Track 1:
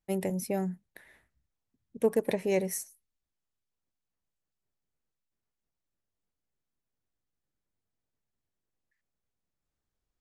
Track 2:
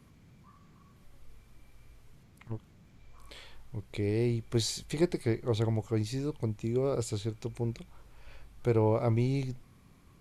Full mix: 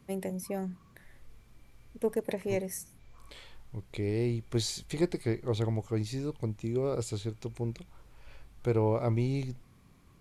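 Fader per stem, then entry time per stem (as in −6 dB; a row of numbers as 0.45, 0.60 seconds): −4.0, −1.0 decibels; 0.00, 0.00 seconds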